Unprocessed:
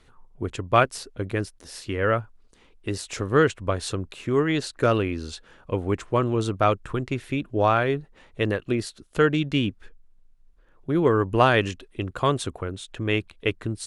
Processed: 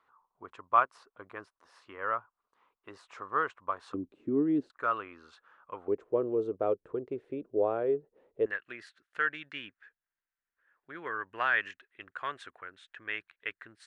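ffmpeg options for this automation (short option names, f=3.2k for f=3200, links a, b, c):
-af "asetnsamples=n=441:p=0,asendcmd='3.94 bandpass f 290;4.7 bandpass f 1200;5.88 bandpass f 450;8.46 bandpass f 1700',bandpass=f=1.1k:t=q:w=3.7:csg=0"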